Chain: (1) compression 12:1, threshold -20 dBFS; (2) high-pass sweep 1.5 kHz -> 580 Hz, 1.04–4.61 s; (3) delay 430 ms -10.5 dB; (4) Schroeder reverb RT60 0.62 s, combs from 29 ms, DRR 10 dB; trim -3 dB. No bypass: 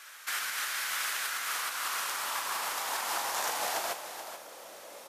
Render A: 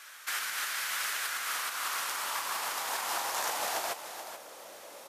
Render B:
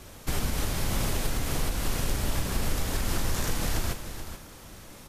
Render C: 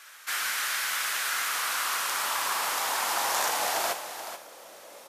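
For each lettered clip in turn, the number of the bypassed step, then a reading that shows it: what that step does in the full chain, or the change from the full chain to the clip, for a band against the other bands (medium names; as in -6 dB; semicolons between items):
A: 4, echo-to-direct -7.0 dB to -10.5 dB; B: 2, 250 Hz band +22.5 dB; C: 1, mean gain reduction 3.5 dB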